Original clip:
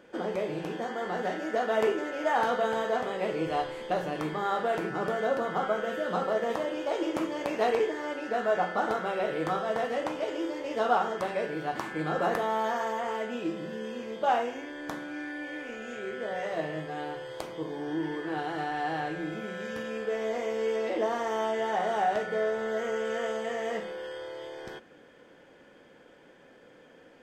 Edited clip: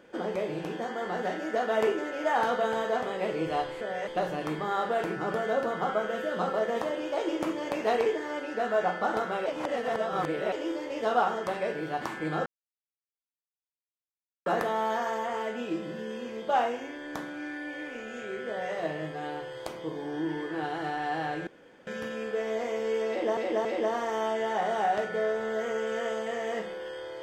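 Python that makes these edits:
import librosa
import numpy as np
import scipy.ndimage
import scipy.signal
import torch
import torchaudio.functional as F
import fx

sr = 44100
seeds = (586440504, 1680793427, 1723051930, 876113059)

y = fx.edit(x, sr, fx.reverse_span(start_s=9.2, length_s=1.06),
    fx.insert_silence(at_s=12.2, length_s=2.0),
    fx.duplicate(start_s=16.22, length_s=0.26, to_s=3.81),
    fx.room_tone_fill(start_s=19.21, length_s=0.4),
    fx.repeat(start_s=20.83, length_s=0.28, count=3), tone=tone)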